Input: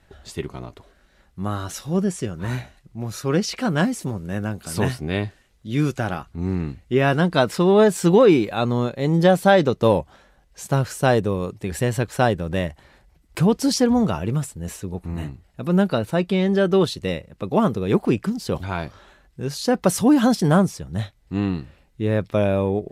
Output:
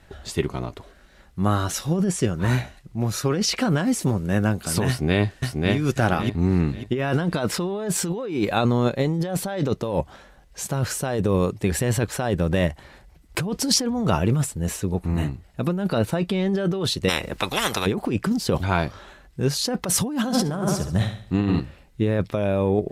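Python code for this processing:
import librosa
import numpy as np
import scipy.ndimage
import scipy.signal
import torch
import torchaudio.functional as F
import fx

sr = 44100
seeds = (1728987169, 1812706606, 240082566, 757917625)

y = fx.echo_throw(x, sr, start_s=4.88, length_s=0.87, ms=540, feedback_pct=30, wet_db=-2.5)
y = fx.spectral_comp(y, sr, ratio=10.0, at=(17.08, 17.85), fade=0.02)
y = fx.room_flutter(y, sr, wall_m=11.8, rt60_s=0.52, at=(20.17, 21.6))
y = fx.over_compress(y, sr, threshold_db=-23.0, ratio=-1.0)
y = F.gain(torch.from_numpy(y), 1.5).numpy()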